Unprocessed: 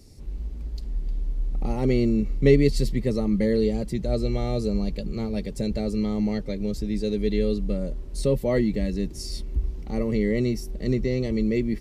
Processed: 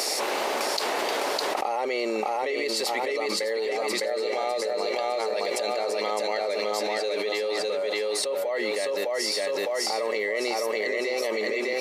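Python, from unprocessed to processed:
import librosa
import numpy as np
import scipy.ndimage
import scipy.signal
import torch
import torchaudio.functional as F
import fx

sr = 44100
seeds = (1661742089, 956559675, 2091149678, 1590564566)

y = scipy.signal.sosfilt(scipy.signal.butter(4, 640.0, 'highpass', fs=sr, output='sos'), x)
y = fx.high_shelf(y, sr, hz=2600.0, db=-9.5)
y = fx.echo_feedback(y, sr, ms=607, feedback_pct=42, wet_db=-3.0)
y = fx.env_flatten(y, sr, amount_pct=100)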